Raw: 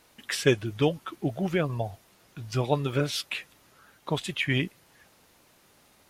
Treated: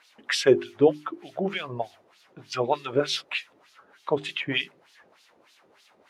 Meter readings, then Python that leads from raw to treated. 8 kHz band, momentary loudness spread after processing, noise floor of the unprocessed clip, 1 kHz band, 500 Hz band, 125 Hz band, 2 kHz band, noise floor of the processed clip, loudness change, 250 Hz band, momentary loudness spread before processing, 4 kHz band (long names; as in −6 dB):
−0.5 dB, 15 LU, −61 dBFS, +3.5 dB, +4.5 dB, −9.0 dB, +1.0 dB, −62 dBFS, +2.0 dB, +0.5 dB, 10 LU, +3.0 dB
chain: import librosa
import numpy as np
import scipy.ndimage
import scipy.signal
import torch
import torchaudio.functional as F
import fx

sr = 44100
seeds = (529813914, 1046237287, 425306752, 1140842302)

y = fx.filter_lfo_bandpass(x, sr, shape='sine', hz=3.3, low_hz=370.0, high_hz=4400.0, q=1.6)
y = fx.hum_notches(y, sr, base_hz=50, count=8)
y = y * 10.0 ** (8.5 / 20.0)